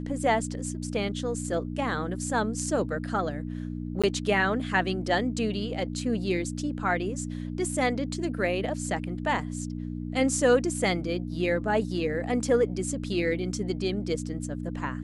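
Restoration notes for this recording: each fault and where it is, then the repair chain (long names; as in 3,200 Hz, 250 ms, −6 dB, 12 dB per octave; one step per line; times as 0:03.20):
mains hum 60 Hz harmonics 5 −34 dBFS
0:04.02–0:04.04: drop-out 16 ms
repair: hum removal 60 Hz, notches 5
repair the gap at 0:04.02, 16 ms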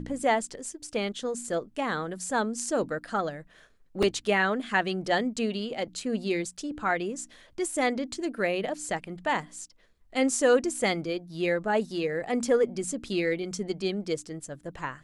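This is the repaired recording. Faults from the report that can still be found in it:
none of them is left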